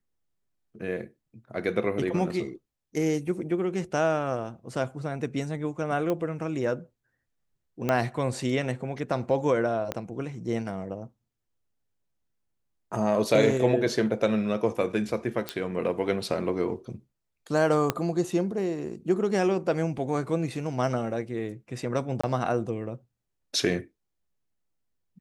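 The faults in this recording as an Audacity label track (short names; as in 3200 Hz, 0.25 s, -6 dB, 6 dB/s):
6.100000	6.100000	pop -16 dBFS
7.890000	7.890000	pop -12 dBFS
9.920000	9.920000	pop -15 dBFS
15.490000	15.490000	pop -13 dBFS
17.900000	17.900000	pop -9 dBFS
22.210000	22.230000	gap 25 ms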